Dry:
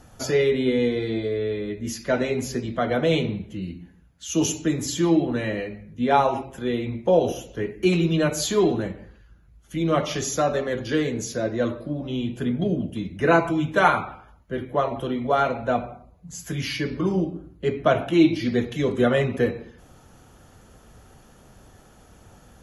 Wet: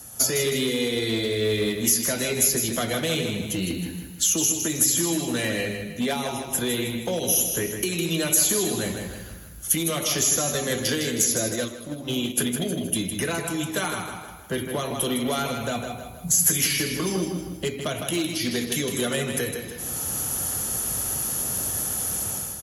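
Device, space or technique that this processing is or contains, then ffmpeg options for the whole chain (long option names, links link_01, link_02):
FM broadcast chain: -filter_complex "[0:a]highpass=48,dynaudnorm=framelen=150:gausssize=5:maxgain=14dB,acrossover=split=290|2200[link_01][link_02][link_03];[link_01]acompressor=threshold=-28dB:ratio=4[link_04];[link_02]acompressor=threshold=-26dB:ratio=4[link_05];[link_03]acompressor=threshold=-32dB:ratio=4[link_06];[link_04][link_05][link_06]amix=inputs=3:normalize=0,aemphasis=mode=production:type=50fm,alimiter=limit=-16.5dB:level=0:latency=1:release=486,asoftclip=type=hard:threshold=-20dB,highpass=49,lowpass=frequency=15000:width=0.5412,lowpass=frequency=15000:width=1.3066,aemphasis=mode=production:type=50fm,aecho=1:1:158|316|474|632|790:0.447|0.192|0.0826|0.0355|0.0153,asplit=3[link_07][link_08][link_09];[link_07]afade=type=out:start_time=11.55:duration=0.02[link_10];[link_08]agate=range=-8dB:threshold=-25dB:ratio=16:detection=peak,afade=type=in:start_time=11.55:duration=0.02,afade=type=out:start_time=12.55:duration=0.02[link_11];[link_09]afade=type=in:start_time=12.55:duration=0.02[link_12];[link_10][link_11][link_12]amix=inputs=3:normalize=0"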